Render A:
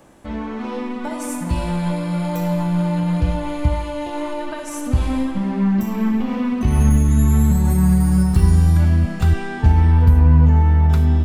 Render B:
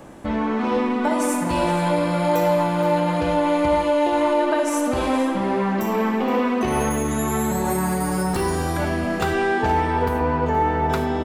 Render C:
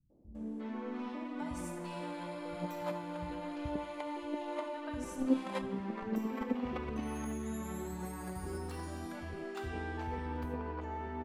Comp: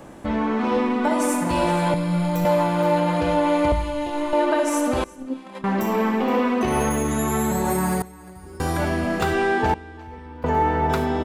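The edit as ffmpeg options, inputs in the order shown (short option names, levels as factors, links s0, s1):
-filter_complex "[0:a]asplit=2[s0][s1];[2:a]asplit=3[s2][s3][s4];[1:a]asplit=6[s5][s6][s7][s8][s9][s10];[s5]atrim=end=1.942[s11];[s0]atrim=start=1.938:end=2.452[s12];[s6]atrim=start=2.448:end=3.722[s13];[s1]atrim=start=3.718:end=4.332[s14];[s7]atrim=start=4.328:end=5.042[s15];[s2]atrim=start=5.038:end=5.642[s16];[s8]atrim=start=5.638:end=8.022[s17];[s3]atrim=start=8.018:end=8.602[s18];[s9]atrim=start=8.598:end=9.742[s19];[s4]atrim=start=9.738:end=10.442[s20];[s10]atrim=start=10.438[s21];[s11][s12]acrossfade=d=0.004:c1=hsin:c2=hsin[s22];[s22][s13]acrossfade=d=0.004:c1=hsin:c2=hsin[s23];[s23][s14]acrossfade=d=0.004:c1=hsin:c2=hsin[s24];[s24][s15]acrossfade=d=0.004:c1=hsin:c2=hsin[s25];[s25][s16]acrossfade=d=0.004:c1=hsin:c2=hsin[s26];[s26][s17]acrossfade=d=0.004:c1=hsin:c2=hsin[s27];[s27][s18]acrossfade=d=0.004:c1=hsin:c2=hsin[s28];[s28][s19]acrossfade=d=0.004:c1=hsin:c2=hsin[s29];[s29][s20]acrossfade=d=0.004:c1=hsin:c2=hsin[s30];[s30][s21]acrossfade=d=0.004:c1=hsin:c2=hsin"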